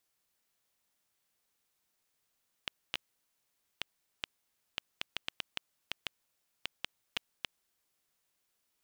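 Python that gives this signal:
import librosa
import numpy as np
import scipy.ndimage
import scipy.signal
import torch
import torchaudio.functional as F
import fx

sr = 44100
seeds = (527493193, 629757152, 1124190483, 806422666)

y = fx.geiger_clicks(sr, seeds[0], length_s=5.5, per_s=3.2, level_db=-15.5)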